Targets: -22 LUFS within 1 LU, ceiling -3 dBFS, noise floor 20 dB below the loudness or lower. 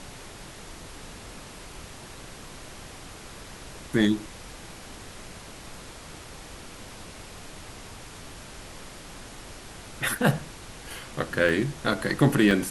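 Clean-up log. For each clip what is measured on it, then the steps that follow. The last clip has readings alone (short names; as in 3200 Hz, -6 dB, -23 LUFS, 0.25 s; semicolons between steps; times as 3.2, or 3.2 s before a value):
dropouts 3; longest dropout 1.6 ms; noise floor -44 dBFS; noise floor target -46 dBFS; loudness -25.5 LUFS; peak -7.0 dBFS; loudness target -22.0 LUFS
-> interpolate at 10.17/11.49/12.51, 1.6 ms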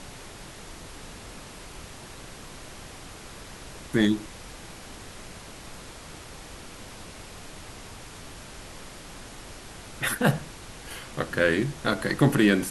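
dropouts 0; noise floor -44 dBFS; noise floor target -46 dBFS
-> noise print and reduce 6 dB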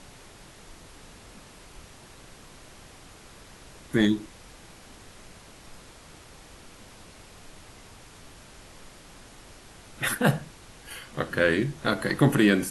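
noise floor -50 dBFS; loudness -25.0 LUFS; peak -7.0 dBFS; loudness target -22.0 LUFS
-> gain +3 dB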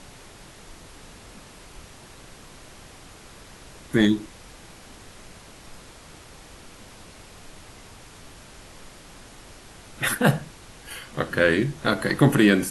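loudness -22.0 LUFS; peak -4.0 dBFS; noise floor -47 dBFS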